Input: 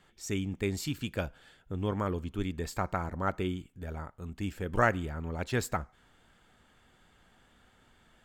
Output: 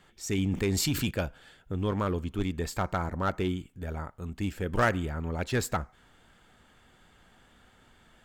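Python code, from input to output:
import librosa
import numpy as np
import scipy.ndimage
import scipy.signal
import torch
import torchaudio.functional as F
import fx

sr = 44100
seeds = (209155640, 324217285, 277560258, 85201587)

p1 = 10.0 ** (-26.0 / 20.0) * (np.abs((x / 10.0 ** (-26.0 / 20.0) + 3.0) % 4.0 - 2.0) - 1.0)
p2 = x + (p1 * librosa.db_to_amplitude(-6.0))
y = fx.env_flatten(p2, sr, amount_pct=70, at=(0.38, 1.11))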